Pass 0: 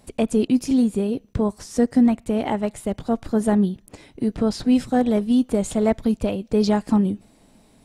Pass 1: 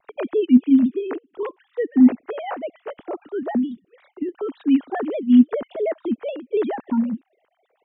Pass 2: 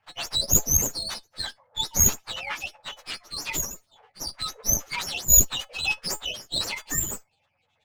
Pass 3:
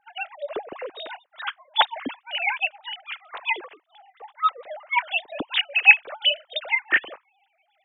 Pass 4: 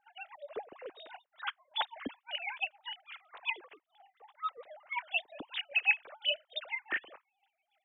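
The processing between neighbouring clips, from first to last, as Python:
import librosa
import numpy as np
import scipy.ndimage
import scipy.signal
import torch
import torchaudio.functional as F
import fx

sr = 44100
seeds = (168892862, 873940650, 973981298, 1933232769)

y1 = fx.sine_speech(x, sr)
y1 = fx.vibrato_shape(y1, sr, shape='saw_down', rate_hz=3.5, depth_cents=100.0)
y2 = fx.octave_mirror(y1, sr, pivot_hz=1300.0)
y2 = fx.comb_fb(y2, sr, f0_hz=430.0, decay_s=0.15, harmonics='all', damping=0.0, mix_pct=60)
y2 = fx.running_max(y2, sr, window=3)
y2 = y2 * librosa.db_to_amplitude(8.5)
y3 = fx.sine_speech(y2, sr)
y3 = y3 * librosa.db_to_amplitude(1.0)
y4 = fx.chopper(y3, sr, hz=3.5, depth_pct=60, duty_pct=25)
y4 = y4 * librosa.db_to_amplitude(-7.0)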